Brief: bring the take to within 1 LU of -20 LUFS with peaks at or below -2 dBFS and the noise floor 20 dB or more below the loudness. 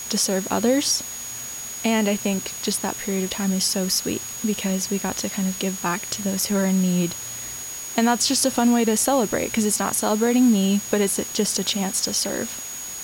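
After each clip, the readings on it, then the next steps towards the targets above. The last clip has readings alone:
steady tone 6.7 kHz; tone level -32 dBFS; noise floor -33 dBFS; noise floor target -42 dBFS; loudness -22.0 LUFS; peak level -5.0 dBFS; loudness target -20.0 LUFS
-> band-stop 6.7 kHz, Q 30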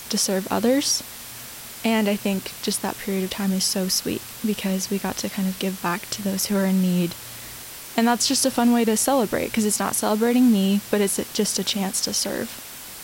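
steady tone not found; noise floor -38 dBFS; noise floor target -42 dBFS
-> noise reduction 6 dB, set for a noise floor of -38 dBFS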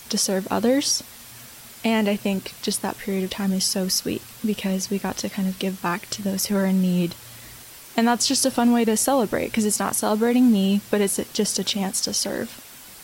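noise floor -43 dBFS; loudness -22.5 LUFS; peak level -5.0 dBFS; loudness target -20.0 LUFS
-> trim +2.5 dB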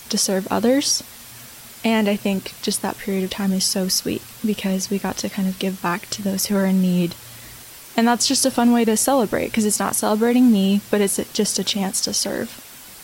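loudness -20.0 LUFS; peak level -2.5 dBFS; noise floor -41 dBFS

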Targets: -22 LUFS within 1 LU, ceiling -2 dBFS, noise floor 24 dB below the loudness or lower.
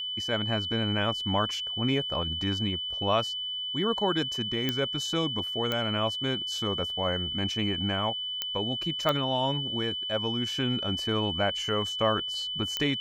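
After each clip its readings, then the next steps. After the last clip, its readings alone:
clicks found 5; steady tone 3 kHz; tone level -31 dBFS; loudness -28.0 LUFS; peak level -11.5 dBFS; loudness target -22.0 LUFS
-> de-click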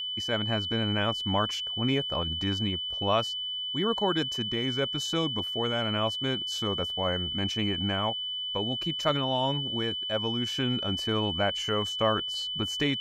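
clicks found 0; steady tone 3 kHz; tone level -31 dBFS
-> band-stop 3 kHz, Q 30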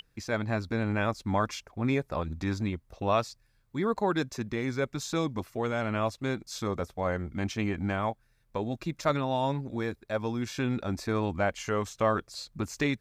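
steady tone not found; loudness -31.0 LUFS; peak level -12.0 dBFS; loudness target -22.0 LUFS
-> trim +9 dB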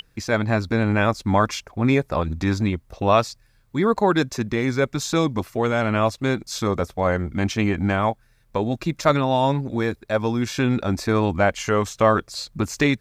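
loudness -22.0 LUFS; peak level -3.0 dBFS; noise floor -59 dBFS

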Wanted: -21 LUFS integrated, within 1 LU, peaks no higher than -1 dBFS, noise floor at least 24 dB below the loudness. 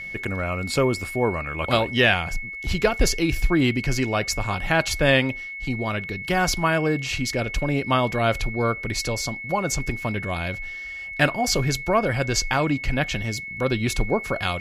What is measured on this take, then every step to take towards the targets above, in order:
steady tone 2.2 kHz; tone level -32 dBFS; loudness -23.5 LUFS; peak level -6.0 dBFS; loudness target -21.0 LUFS
-> band-stop 2.2 kHz, Q 30; trim +2.5 dB

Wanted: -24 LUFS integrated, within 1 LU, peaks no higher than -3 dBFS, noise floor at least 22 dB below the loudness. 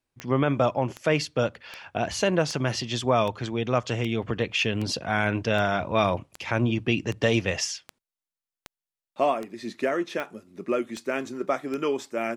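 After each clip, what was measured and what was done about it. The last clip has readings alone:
clicks found 16; loudness -26.5 LUFS; peak level -9.5 dBFS; loudness target -24.0 LUFS
-> de-click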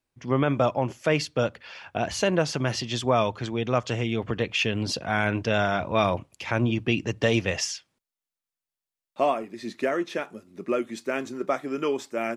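clicks found 0; loudness -26.5 LUFS; peak level -9.5 dBFS; loudness target -24.0 LUFS
-> trim +2.5 dB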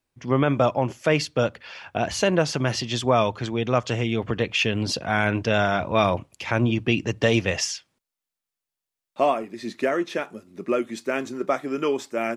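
loudness -24.0 LUFS; peak level -7.0 dBFS; noise floor -88 dBFS

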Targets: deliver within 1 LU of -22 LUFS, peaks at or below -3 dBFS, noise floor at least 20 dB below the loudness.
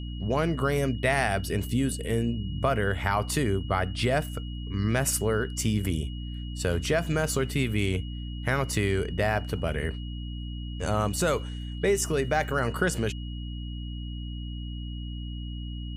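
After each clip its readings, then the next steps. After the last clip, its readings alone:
hum 60 Hz; highest harmonic 300 Hz; hum level -32 dBFS; steady tone 2.9 kHz; tone level -46 dBFS; loudness -28.5 LUFS; peak level -9.0 dBFS; loudness target -22.0 LUFS
-> hum notches 60/120/180/240/300 Hz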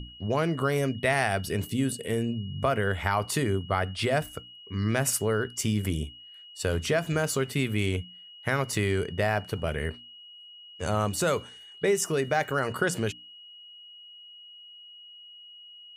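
hum not found; steady tone 2.9 kHz; tone level -46 dBFS
-> band-stop 2.9 kHz, Q 30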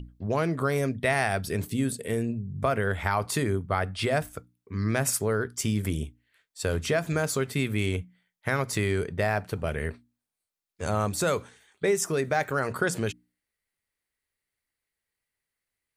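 steady tone not found; loudness -28.0 LUFS; peak level -9.5 dBFS; loudness target -22.0 LUFS
-> trim +6 dB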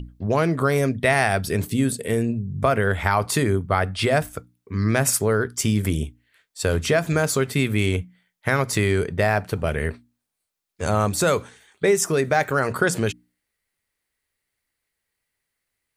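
loudness -22.0 LUFS; peak level -3.5 dBFS; noise floor -81 dBFS

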